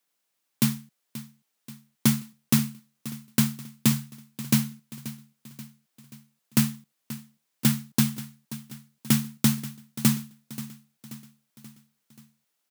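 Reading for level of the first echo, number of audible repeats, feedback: −15.5 dB, 4, 53%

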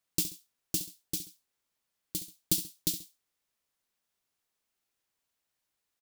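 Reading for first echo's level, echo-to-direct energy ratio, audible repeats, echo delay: −12.5 dB, −12.0 dB, 2, 67 ms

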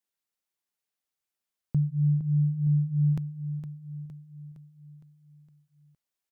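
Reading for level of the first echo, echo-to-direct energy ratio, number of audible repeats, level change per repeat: −10.0 dB, −8.5 dB, 5, −5.5 dB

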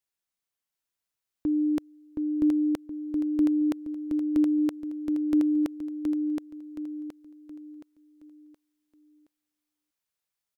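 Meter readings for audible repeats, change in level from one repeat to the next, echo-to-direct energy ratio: 4, −8.0 dB, −3.5 dB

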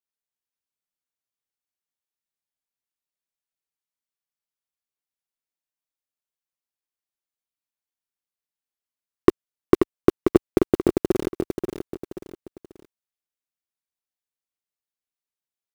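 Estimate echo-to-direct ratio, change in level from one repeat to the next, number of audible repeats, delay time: −5.5 dB, −8.0 dB, 3, 533 ms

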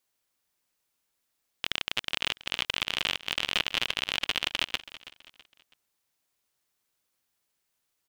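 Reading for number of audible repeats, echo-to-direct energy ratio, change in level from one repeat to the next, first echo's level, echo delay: 3, −16.0 dB, −8.5 dB, −16.5 dB, 327 ms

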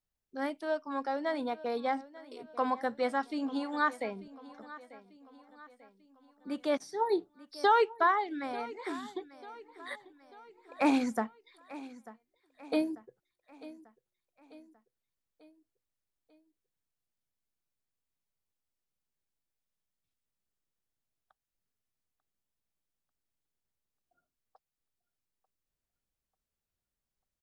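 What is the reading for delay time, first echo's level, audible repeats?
892 ms, −18.0 dB, 3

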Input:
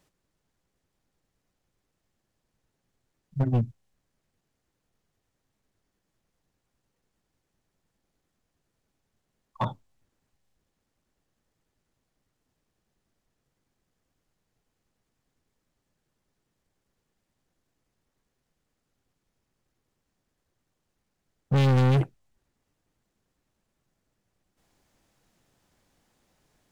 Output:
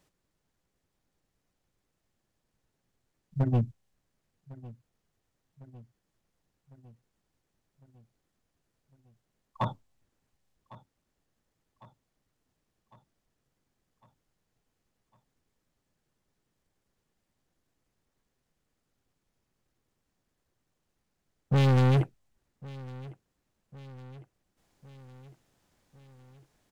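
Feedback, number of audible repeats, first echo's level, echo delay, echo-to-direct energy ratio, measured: 58%, 4, −20.0 dB, 1,104 ms, −18.0 dB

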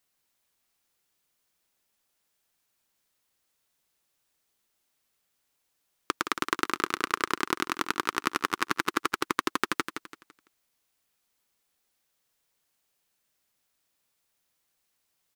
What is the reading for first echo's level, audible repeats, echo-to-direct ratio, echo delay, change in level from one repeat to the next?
−8.0 dB, 3, −7.5 dB, 168 ms, −9.5 dB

